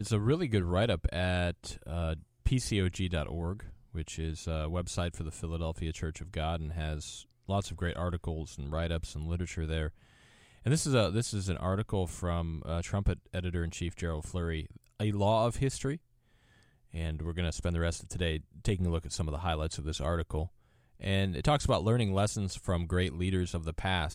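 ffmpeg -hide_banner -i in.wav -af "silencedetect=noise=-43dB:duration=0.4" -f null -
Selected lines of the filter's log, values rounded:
silence_start: 9.89
silence_end: 10.66 | silence_duration: 0.77
silence_start: 15.97
silence_end: 16.94 | silence_duration: 0.97
silence_start: 20.47
silence_end: 21.00 | silence_duration: 0.53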